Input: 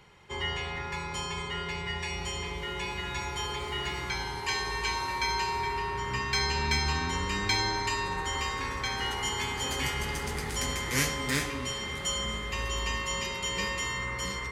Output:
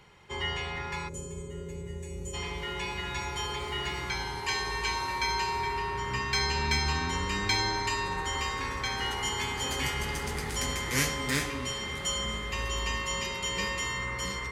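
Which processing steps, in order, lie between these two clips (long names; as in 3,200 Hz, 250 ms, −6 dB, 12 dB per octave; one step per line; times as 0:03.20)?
gain on a spectral selection 0:01.08–0:02.34, 640–5,900 Hz −20 dB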